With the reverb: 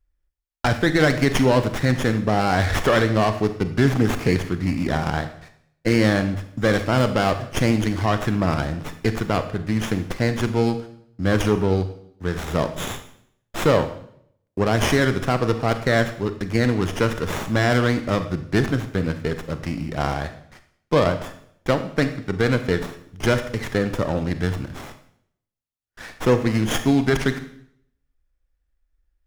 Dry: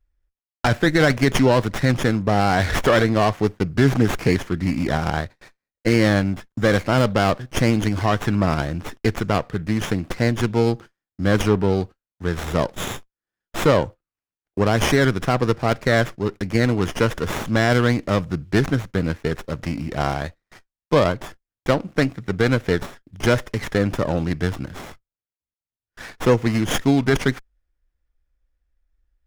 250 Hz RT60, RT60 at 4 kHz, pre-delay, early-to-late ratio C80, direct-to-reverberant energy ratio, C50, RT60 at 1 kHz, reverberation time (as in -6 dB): 0.75 s, 0.65 s, 30 ms, 14.0 dB, 9.0 dB, 11.0 dB, 0.65 s, 0.65 s